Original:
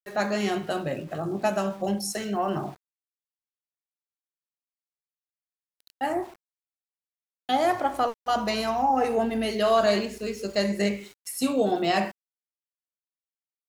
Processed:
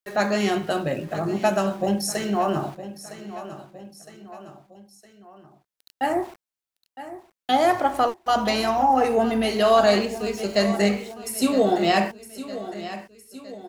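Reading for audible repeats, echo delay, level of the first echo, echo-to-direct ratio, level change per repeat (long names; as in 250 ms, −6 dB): 3, 961 ms, −14.0 dB, −12.5 dB, −5.5 dB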